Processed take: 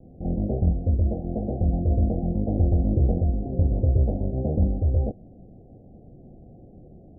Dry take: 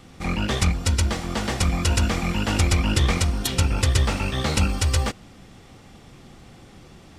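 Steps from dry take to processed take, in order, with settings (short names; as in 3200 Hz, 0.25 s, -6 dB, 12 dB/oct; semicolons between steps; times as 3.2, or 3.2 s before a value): steep low-pass 730 Hz 96 dB/oct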